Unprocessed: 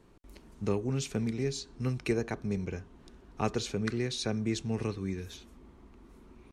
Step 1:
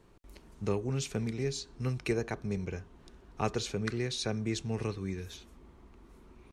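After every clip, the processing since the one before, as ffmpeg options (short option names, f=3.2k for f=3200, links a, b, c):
-af "equalizer=f=250:t=o:w=0.78:g=-4"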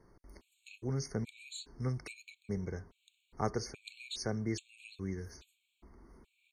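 -af "afftfilt=real='re*gt(sin(2*PI*1.2*pts/sr)*(1-2*mod(floor(b*sr/1024/2200),2)),0)':imag='im*gt(sin(2*PI*1.2*pts/sr)*(1-2*mod(floor(b*sr/1024/2200),2)),0)':win_size=1024:overlap=0.75,volume=-2dB"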